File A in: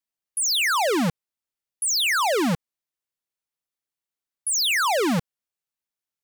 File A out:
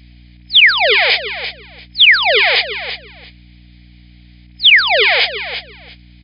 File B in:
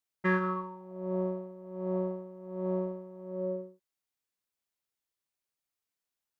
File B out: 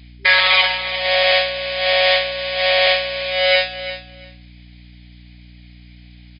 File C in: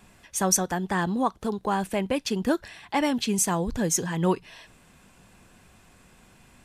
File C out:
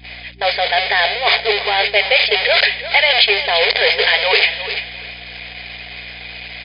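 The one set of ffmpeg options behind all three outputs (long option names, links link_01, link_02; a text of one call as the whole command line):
ffmpeg -i in.wav -filter_complex "[0:a]aeval=exprs='val(0)+0.5*0.075*sgn(val(0))':channel_layout=same,acrossover=split=2900[link_01][link_02];[link_02]acompressor=threshold=-32dB:ratio=4:attack=1:release=60[link_03];[link_01][link_03]amix=inputs=2:normalize=0,bandreject=frequency=2700:width=6.4,agate=range=-46dB:threshold=-26dB:ratio=16:detection=peak,equalizer=frequency=710:width_type=o:width=0.27:gain=9,afftfilt=real='re*between(b*sr/4096,390,5100)':imag='im*between(b*sr/4096,390,5100)':win_size=4096:overlap=0.75,areverse,acompressor=threshold=-33dB:ratio=6,areverse,aeval=exprs='val(0)+0.00112*(sin(2*PI*60*n/s)+sin(2*PI*2*60*n/s)/2+sin(2*PI*3*60*n/s)/3+sin(2*PI*4*60*n/s)/4+sin(2*PI*5*60*n/s)/5)':channel_layout=same,highshelf=frequency=1700:width_type=q:width=3:gain=11.5,asplit=2[link_04][link_05];[link_05]aecho=0:1:344|688:0.224|0.0381[link_06];[link_04][link_06]amix=inputs=2:normalize=0,alimiter=level_in=19.5dB:limit=-1dB:release=50:level=0:latency=1,volume=-1dB" out.wav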